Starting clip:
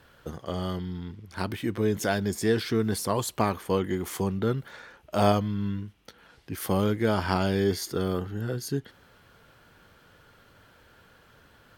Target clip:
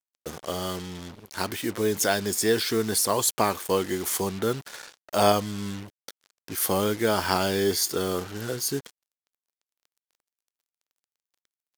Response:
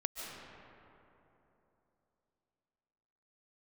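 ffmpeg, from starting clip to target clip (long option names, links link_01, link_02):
-af "acrusher=bits=6:mix=0:aa=0.5,bass=frequency=250:gain=-9,treble=frequency=4000:gain=8,volume=3dB"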